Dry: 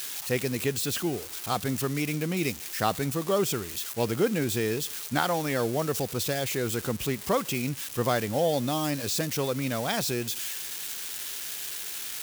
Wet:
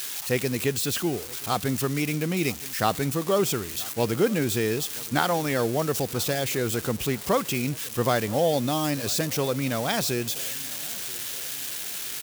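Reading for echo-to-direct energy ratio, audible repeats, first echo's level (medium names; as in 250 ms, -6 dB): -21.0 dB, 3, -22.5 dB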